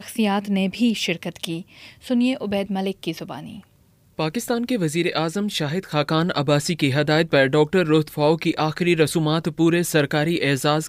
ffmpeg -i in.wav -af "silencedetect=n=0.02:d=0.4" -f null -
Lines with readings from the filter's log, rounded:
silence_start: 3.59
silence_end: 4.19 | silence_duration: 0.59